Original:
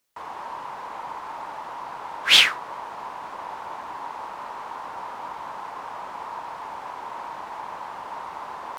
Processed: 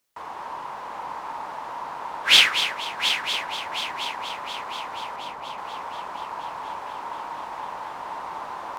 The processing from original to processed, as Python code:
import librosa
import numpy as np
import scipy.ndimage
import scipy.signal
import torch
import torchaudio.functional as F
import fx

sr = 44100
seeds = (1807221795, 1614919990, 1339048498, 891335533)

y = fx.lowpass(x, sr, hz=1100.0, slope=12, at=(5.16, 5.58))
y = fx.echo_heads(y, sr, ms=240, heads='first and third', feedback_pct=66, wet_db=-10)